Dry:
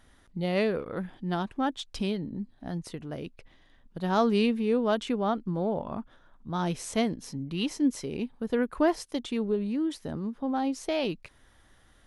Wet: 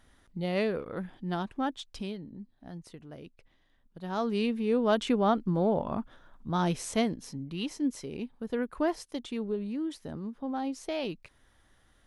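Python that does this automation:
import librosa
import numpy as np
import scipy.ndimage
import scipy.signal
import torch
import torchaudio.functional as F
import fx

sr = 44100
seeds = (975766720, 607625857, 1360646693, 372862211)

y = fx.gain(x, sr, db=fx.line((1.63, -2.5), (2.25, -9.0), (4.01, -9.0), (5.07, 2.5), (6.48, 2.5), (7.62, -4.5)))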